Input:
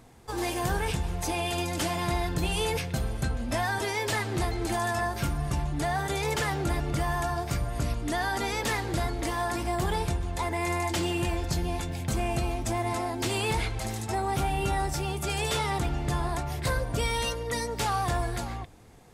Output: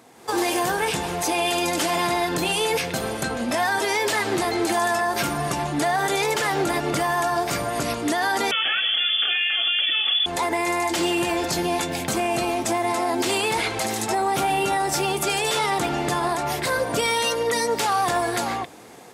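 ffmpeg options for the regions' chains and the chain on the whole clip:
ffmpeg -i in.wav -filter_complex "[0:a]asettb=1/sr,asplit=3[link_01][link_02][link_03];[link_01]atrim=end=8.514[link_04];[link_02]atrim=start=8.51:end=10.26,asetpts=PTS-STARTPTS,afade=type=in:duration=0.004:curve=qsin,afade=type=out:start_time=1.746:duration=0.004:curve=qsin,lowpass=frequency=3000:width_type=q:width=0.5098,lowpass=frequency=3000:width_type=q:width=0.6013,lowpass=frequency=3000:width_type=q:width=0.9,lowpass=frequency=3000:width_type=q:width=2.563,afreqshift=-3500,aeval=exprs='val(0)+0.00112*(sin(2*PI*50*n/s)+sin(2*PI*2*50*n/s)/2+sin(2*PI*3*50*n/s)/3+sin(2*PI*4*50*n/s)/4+sin(2*PI*5*50*n/s)/5)':channel_layout=same,asuperstop=centerf=1000:order=12:qfactor=5.1[link_05];[link_03]atrim=start=10.256[link_06];[link_04][link_05]acrossfade=duration=0.004:curve1=hsin:curve2=qsin[link_07];[link_07][link_06]acrossfade=duration=0.004:curve1=qsin:curve2=hsin,highpass=270,alimiter=level_in=3dB:limit=-24dB:level=0:latency=1:release=91,volume=-3dB,dynaudnorm=framelen=130:gausssize=3:maxgain=7.5dB,volume=5.5dB" out.wav

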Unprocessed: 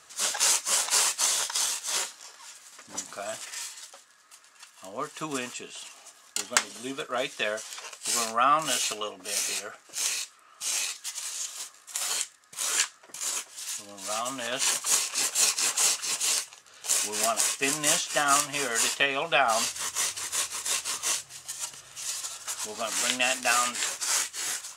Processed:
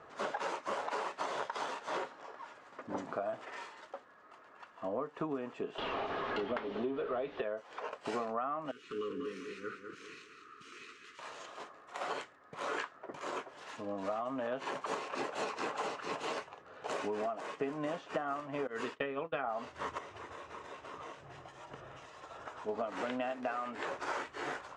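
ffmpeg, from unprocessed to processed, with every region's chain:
ffmpeg -i in.wav -filter_complex "[0:a]asettb=1/sr,asplit=3[link_01][link_02][link_03];[link_01]atrim=end=5.784[link_04];[link_02]atrim=start=5.78:end=7.42,asetpts=PTS-STARTPTS,afade=type=in:duration=0.004:curve=qsin,afade=type=out:start_time=1.636:duration=0.004:curve=qsin,aeval=exprs='val(0)+0.5*0.0355*sgn(val(0))':channel_layout=same,lowpass=frequency=3600:width_type=q:width=1.8,equalizer=frequency=400:width=7.2:gain=6[link_05];[link_03]atrim=start=7.416[link_06];[link_04][link_05]acrossfade=duration=0.004:curve1=hsin:curve2=qsin[link_07];[link_07][link_06]acrossfade=duration=0.004:curve1=qsin:curve2=hsin,asettb=1/sr,asplit=3[link_08][link_09][link_10];[link_08]atrim=end=8.714[link_11];[link_09]atrim=start=8.71:end=11.19,asetpts=PTS-STARTPTS,afade=type=in:duration=0.004:curve=qsin,afade=type=out:start_time=2.476:duration=0.004:curve=qsin,asuperstop=centerf=720:order=8:qfactor=0.96,acompressor=threshold=-43dB:ratio=2:attack=3.2:release=140:knee=1:detection=peak,aecho=1:1:199|398|597|796:0.447|0.161|0.0579|0.0208,atrim=end_sample=109368[link_12];[link_10]atrim=start=11.186[link_13];[link_11][link_12]acrossfade=duration=0.004:curve1=hsin:curve2=qsin[link_14];[link_14][link_13]acrossfade=duration=0.004:curve1=qsin:curve2=hsin,asettb=1/sr,asplit=3[link_15][link_16][link_17];[link_15]atrim=end=18.674[link_18];[link_16]atrim=start=18.67:end=19.44,asetpts=PTS-STARTPTS,afade=type=in:duration=0.004:curve=qsin,afade=type=out:start_time=0.766:duration=0.004:curve=qsin,agate=range=-33dB:threshold=-27dB:ratio=3:release=100:detection=peak,equalizer=frequency=720:width=2:gain=-11[link_19];[link_17]atrim=start=19.436[link_20];[link_18][link_19]acrossfade=duration=0.004:curve1=hsin:curve2=qsin[link_21];[link_21][link_20]acrossfade=duration=0.004:curve1=qsin:curve2=hsin,asettb=1/sr,asplit=3[link_22][link_23][link_24];[link_22]atrim=end=19.984[link_25];[link_23]atrim=start=19.98:end=22.69,asetpts=PTS-STARTPTS,afade=type=in:duration=0.004:curve=qsin,afade=type=out:start_time=2.706:duration=0.004:curve=qsin,equalizer=frequency=11000:width_type=o:width=0.42:gain=-4.5,bandreject=frequency=4400:width=12,acompressor=threshold=-38dB:ratio=10:attack=3.2:release=140:knee=1:detection=peak[link_26];[link_24]atrim=start=22.686[link_27];[link_25][link_26]acrossfade=duration=0.004:curve1=hsin:curve2=qsin[link_28];[link_28][link_27]acrossfade=duration=0.004:curve1=qsin:curve2=hsin,lowpass=1200,equalizer=frequency=410:width_type=o:width=1.7:gain=6,acompressor=threshold=-38dB:ratio=16,volume=5dB" out.wav

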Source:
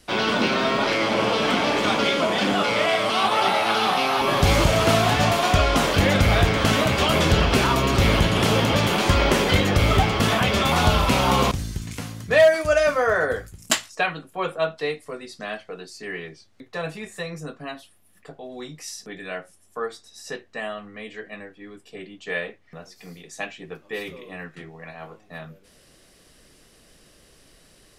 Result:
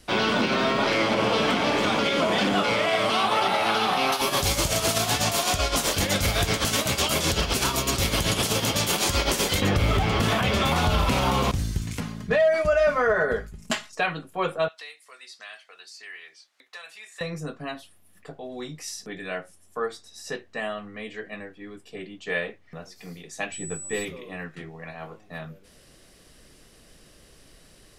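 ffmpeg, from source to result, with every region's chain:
ffmpeg -i in.wav -filter_complex "[0:a]asettb=1/sr,asplit=3[link_01][link_02][link_03];[link_01]atrim=end=4.124[link_04];[link_02]atrim=start=4.12:end=9.62,asetpts=PTS-STARTPTS,afade=type=in:duration=0.004:curve=qsin,afade=type=out:start_time=5.496:duration=0.004:curve=qsin,bass=frequency=250:gain=-3,treble=frequency=4000:gain=15,tremolo=f=7.9:d=0.71[link_05];[link_03]atrim=start=9.616[link_06];[link_04][link_05]acrossfade=duration=0.004:curve1=hsin:curve2=qsin[link_07];[link_07][link_06]acrossfade=duration=0.004:curve1=qsin:curve2=hsin,asettb=1/sr,asplit=3[link_08][link_09][link_10];[link_08]atrim=end=12.004[link_11];[link_09]atrim=start=12:end=13.93,asetpts=PTS-STARTPTS,afade=type=in:duration=0.004:curve=qsin,afade=type=out:start_time=1.926:duration=0.004:curve=qsin,lowpass=frequency=2800:poles=1,aecho=1:1:4.8:0.6,atrim=end_sample=85113[link_12];[link_10]atrim=start=13.926[link_13];[link_11][link_12]acrossfade=duration=0.004:curve1=hsin:curve2=qsin[link_14];[link_14][link_13]acrossfade=duration=0.004:curve1=qsin:curve2=hsin,asettb=1/sr,asplit=3[link_15][link_16][link_17];[link_15]atrim=end=14.684[link_18];[link_16]atrim=start=14.68:end=17.21,asetpts=PTS-STARTPTS,afade=type=in:duration=0.004:curve=qsin,afade=type=out:start_time=2.526:duration=0.004:curve=qsin,acrossover=split=1800|6800[link_19][link_20][link_21];[link_19]acompressor=threshold=-42dB:ratio=4[link_22];[link_20]acompressor=threshold=-42dB:ratio=4[link_23];[link_21]acompressor=threshold=-58dB:ratio=4[link_24];[link_22][link_23][link_24]amix=inputs=3:normalize=0,highpass=990[link_25];[link_17]atrim=start=17.206[link_26];[link_18][link_25]acrossfade=duration=0.004:curve1=hsin:curve2=qsin[link_27];[link_27][link_26]acrossfade=duration=0.004:curve1=qsin:curve2=hsin,asettb=1/sr,asplit=3[link_28][link_29][link_30];[link_28]atrim=end=23.524[link_31];[link_29]atrim=start=23.52:end=24.05,asetpts=PTS-STARTPTS,afade=type=in:duration=0.004:curve=qsin,afade=type=out:start_time=0.526:duration=0.004:curve=qsin,lowshelf=frequency=160:gain=11.5,aeval=exprs='val(0)+0.0178*sin(2*PI*7900*n/s)':channel_layout=same[link_32];[link_30]atrim=start=24.046[link_33];[link_31][link_32]acrossfade=duration=0.004:curve1=hsin:curve2=qsin[link_34];[link_34][link_33]acrossfade=duration=0.004:curve1=qsin:curve2=hsin,lowshelf=frequency=150:gain=3.5,alimiter=limit=-13dB:level=0:latency=1:release=92" out.wav

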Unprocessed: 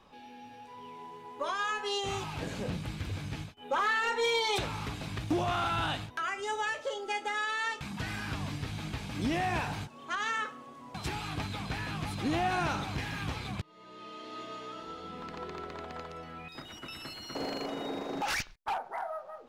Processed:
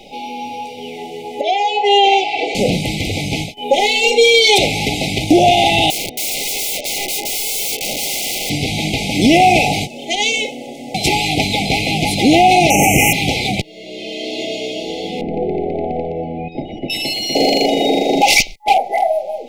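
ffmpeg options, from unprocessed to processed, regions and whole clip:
ffmpeg -i in.wav -filter_complex "[0:a]asettb=1/sr,asplit=3[link_01][link_02][link_03];[link_01]atrim=end=1.414[link_04];[link_02]atrim=start=1.41:end=2.55,asetpts=PTS-STARTPTS,afade=type=in:duration=0.004:curve=qsin,afade=type=out:start_time=1.136:duration=0.004:curve=qsin,highpass=570,lowpass=2700,aecho=1:1:2.6:0.95,atrim=end_sample=50274[link_05];[link_03]atrim=start=2.546[link_06];[link_04][link_05]acrossfade=duration=0.004:curve1=hsin:curve2=qsin[link_07];[link_07][link_06]acrossfade=duration=0.004:curve1=qsin:curve2=hsin,asettb=1/sr,asplit=3[link_08][link_09][link_10];[link_08]atrim=end=5.904[link_11];[link_09]atrim=start=5.9:end=8.5,asetpts=PTS-STARTPTS,afade=type=in:duration=0.004:curve=qsin,afade=type=out:start_time=2.596:duration=0.004:curve=qsin,adynamicsmooth=sensitivity=4:basefreq=4700,aeval=exprs='(mod(94.4*val(0)+1,2)-1)/94.4':channel_layout=same[link_12];[link_10]atrim=start=8.496[link_13];[link_11][link_12]acrossfade=duration=0.004:curve1=hsin:curve2=qsin[link_14];[link_14][link_13]acrossfade=duration=0.004:curve1=qsin:curve2=hsin,asettb=1/sr,asplit=3[link_15][link_16][link_17];[link_15]atrim=end=12.704[link_18];[link_16]atrim=start=12.7:end=13.13,asetpts=PTS-STARTPTS,afade=type=in:duration=0.004:curve=qsin,afade=type=out:start_time=0.426:duration=0.004:curve=qsin,asuperstop=centerf=4100:order=12:qfactor=1.5,aemphasis=mode=production:type=50fm,acontrast=73[link_19];[link_17]atrim=start=13.126[link_20];[link_18][link_19]acrossfade=duration=0.004:curve1=hsin:curve2=qsin[link_21];[link_21][link_20]acrossfade=duration=0.004:curve1=qsin:curve2=hsin,asettb=1/sr,asplit=3[link_22][link_23][link_24];[link_22]atrim=end=15.214[link_25];[link_23]atrim=start=15.21:end=16.9,asetpts=PTS-STARTPTS,afade=type=in:duration=0.004:curve=qsin,afade=type=out:start_time=1.686:duration=0.004:curve=qsin,lowpass=1100,lowshelf=frequency=240:gain=7.5[link_26];[link_24]atrim=start=16.896[link_27];[link_25][link_26]acrossfade=duration=0.004:curve1=hsin:curve2=qsin[link_28];[link_28][link_27]acrossfade=duration=0.004:curve1=qsin:curve2=hsin,afftfilt=real='re*(1-between(b*sr/4096,840,2000))':imag='im*(1-between(b*sr/4096,840,2000))':win_size=4096:overlap=0.75,equalizer=frequency=74:width=0.59:gain=-14,alimiter=level_in=25dB:limit=-1dB:release=50:level=0:latency=1,volume=-1dB" out.wav

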